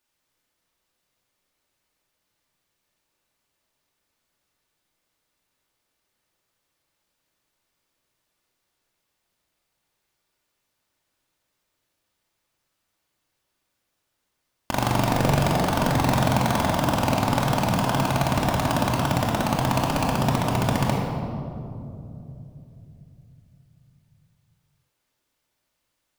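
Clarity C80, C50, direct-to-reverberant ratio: 2.0 dB, 0.5 dB, -3.5 dB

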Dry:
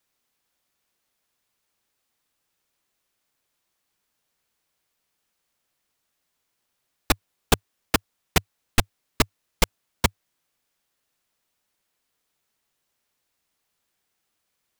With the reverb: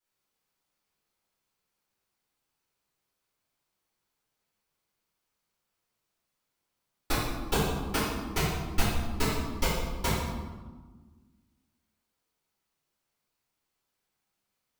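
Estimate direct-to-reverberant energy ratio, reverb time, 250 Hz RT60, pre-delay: -11.5 dB, 1.4 s, 2.1 s, 3 ms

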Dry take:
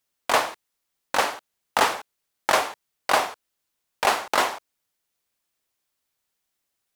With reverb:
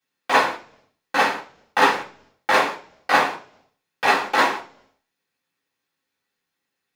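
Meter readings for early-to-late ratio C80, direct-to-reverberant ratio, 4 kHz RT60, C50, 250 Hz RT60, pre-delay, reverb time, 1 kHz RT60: 16.0 dB, -10.5 dB, 0.55 s, 11.5 dB, 0.75 s, 3 ms, 0.50 s, 0.40 s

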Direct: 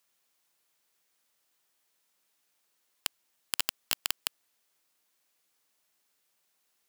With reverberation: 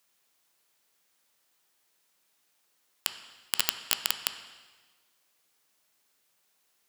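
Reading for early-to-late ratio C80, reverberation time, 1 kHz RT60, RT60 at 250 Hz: 11.5 dB, 1.4 s, 1.4 s, 1.4 s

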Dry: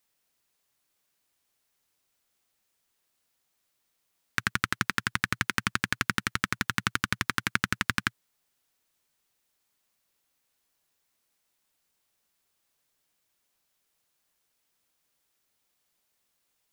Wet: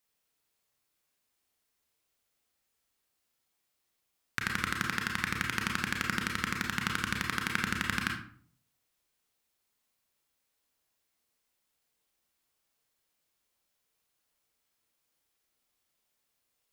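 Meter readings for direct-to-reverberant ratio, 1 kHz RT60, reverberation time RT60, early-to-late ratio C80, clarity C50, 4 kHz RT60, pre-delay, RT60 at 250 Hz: 0.5 dB, 0.50 s, 0.50 s, 9.5 dB, 5.5 dB, 0.35 s, 28 ms, 0.65 s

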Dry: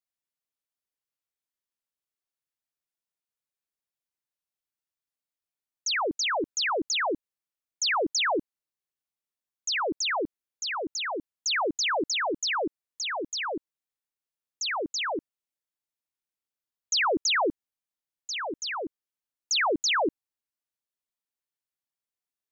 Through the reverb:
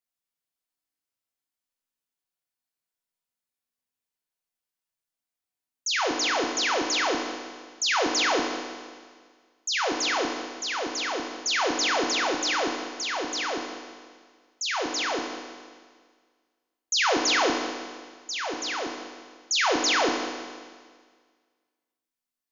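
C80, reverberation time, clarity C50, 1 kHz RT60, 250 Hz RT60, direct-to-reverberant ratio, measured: 5.0 dB, 1.7 s, 4.0 dB, 1.7 s, 1.7 s, 1.5 dB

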